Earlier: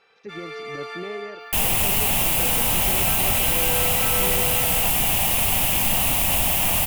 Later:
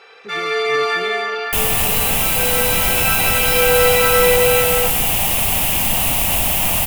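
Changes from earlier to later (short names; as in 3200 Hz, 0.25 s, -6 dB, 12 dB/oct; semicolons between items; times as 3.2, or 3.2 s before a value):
first sound +11.5 dB; reverb: on, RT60 0.55 s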